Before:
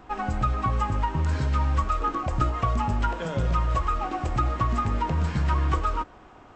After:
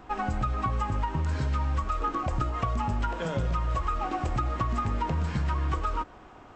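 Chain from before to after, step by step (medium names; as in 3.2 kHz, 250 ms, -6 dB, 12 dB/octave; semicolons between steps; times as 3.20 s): compression, threshold -24 dBFS, peak gain reduction 6.5 dB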